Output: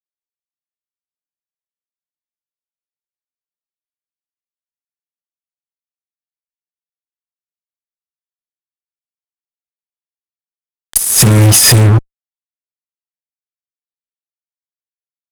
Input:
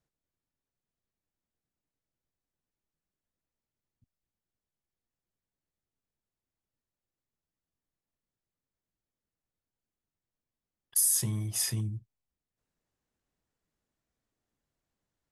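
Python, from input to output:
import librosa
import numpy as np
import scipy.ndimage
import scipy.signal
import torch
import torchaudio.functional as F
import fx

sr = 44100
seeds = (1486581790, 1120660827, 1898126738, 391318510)

y = fx.over_compress(x, sr, threshold_db=-34.0, ratio=-0.5, at=(10.97, 11.73))
y = fx.fuzz(y, sr, gain_db=44.0, gate_db=-47.0)
y = F.gain(torch.from_numpy(y), 8.5).numpy()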